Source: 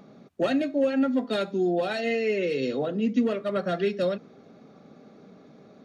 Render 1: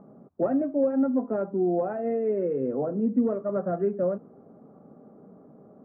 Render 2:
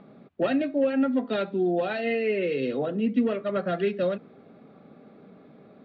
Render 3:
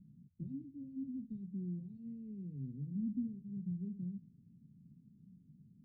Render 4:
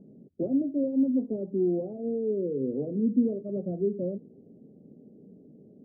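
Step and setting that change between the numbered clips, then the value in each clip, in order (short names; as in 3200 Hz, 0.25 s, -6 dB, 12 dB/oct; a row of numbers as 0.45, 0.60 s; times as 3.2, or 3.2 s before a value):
inverse Chebyshev low-pass, stop band from: 3800, 9800, 560, 1500 Hz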